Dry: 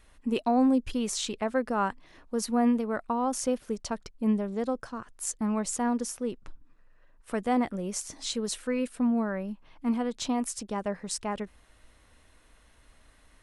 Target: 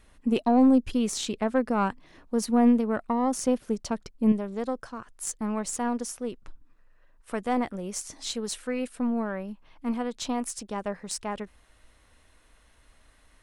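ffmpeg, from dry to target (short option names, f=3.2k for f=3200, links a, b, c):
-af "aeval=exprs='0.211*(cos(1*acos(clip(val(0)/0.211,-1,1)))-cos(1*PI/2))+0.0133*(cos(4*acos(clip(val(0)/0.211,-1,1)))-cos(4*PI/2))':c=same,asetnsamples=n=441:p=0,asendcmd='4.32 equalizer g -2',equalizer=f=190:t=o:w=2.5:g=4.5"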